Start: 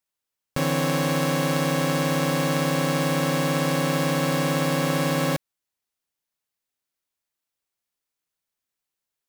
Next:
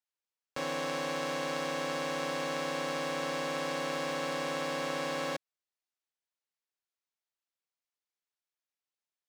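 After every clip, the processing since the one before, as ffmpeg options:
-filter_complex "[0:a]acrossover=split=310 7900:gain=0.141 1 0.178[a][b][c];[a][b][c]amix=inputs=3:normalize=0,volume=-8dB"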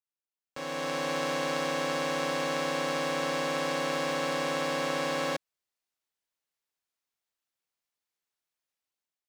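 -af "dynaudnorm=f=290:g=5:m=12dB,volume=-8dB"

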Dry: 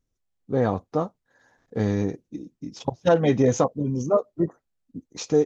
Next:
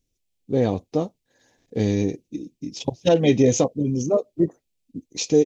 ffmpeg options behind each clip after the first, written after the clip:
-af "firequalizer=gain_entry='entry(200,0);entry(310,3);entry(1300,-13);entry(2400,6)':delay=0.05:min_phase=1,volume=1.5dB"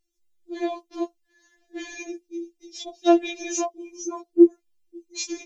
-af "afftfilt=real='re*4*eq(mod(b,16),0)':imag='im*4*eq(mod(b,16),0)':win_size=2048:overlap=0.75"

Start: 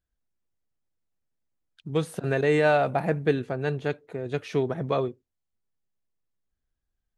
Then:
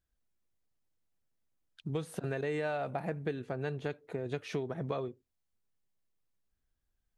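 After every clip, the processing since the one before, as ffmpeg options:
-af "acompressor=threshold=-33dB:ratio=5"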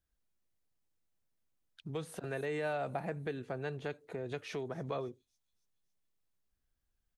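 -filter_complex "[0:a]acrossover=split=420|5700[a][b][c];[a]alimiter=level_in=11.5dB:limit=-24dB:level=0:latency=1,volume=-11.5dB[d];[c]aecho=1:1:279|558|837|1116|1395:0.282|0.144|0.0733|0.0374|0.0191[e];[d][b][e]amix=inputs=3:normalize=0,volume=-1dB"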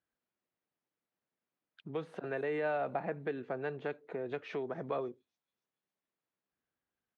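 -af "highpass=210,lowpass=2.4k,volume=2.5dB"

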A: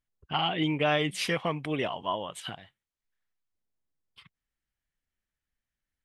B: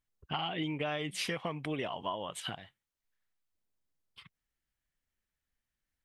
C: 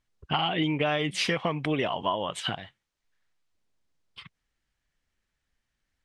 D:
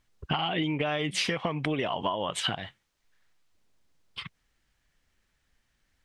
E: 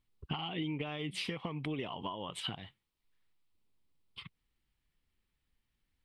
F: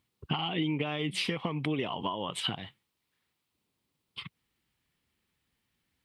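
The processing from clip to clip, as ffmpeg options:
-af "acompressor=threshold=-32dB:ratio=6"
-af "lowpass=6.8k,volume=8.5dB"
-af "acompressor=threshold=-33dB:ratio=6,volume=7dB"
-af "equalizer=f=630:t=o:w=0.67:g=-8,equalizer=f=1.6k:t=o:w=0.67:g=-9,equalizer=f=6.3k:t=o:w=0.67:g=-11,volume=-6.5dB"
-af "highpass=100,volume=6.5dB"

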